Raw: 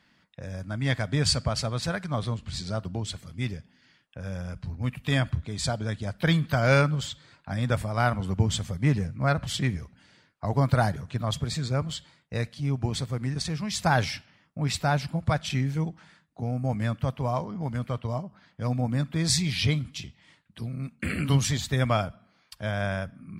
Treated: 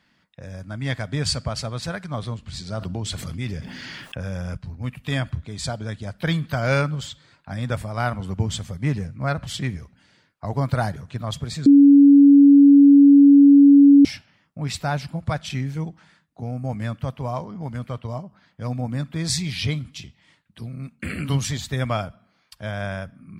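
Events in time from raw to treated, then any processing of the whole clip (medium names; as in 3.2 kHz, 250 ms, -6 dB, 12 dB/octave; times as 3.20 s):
2.72–4.57 s: level flattener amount 70%
11.66–14.05 s: bleep 282 Hz -7 dBFS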